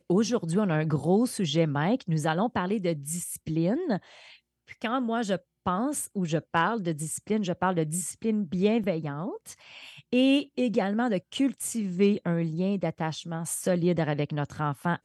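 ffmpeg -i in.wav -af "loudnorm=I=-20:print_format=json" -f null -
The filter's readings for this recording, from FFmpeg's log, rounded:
"input_i" : "-28.0",
"input_tp" : "-10.2",
"input_lra" : "3.4",
"input_thresh" : "-38.3",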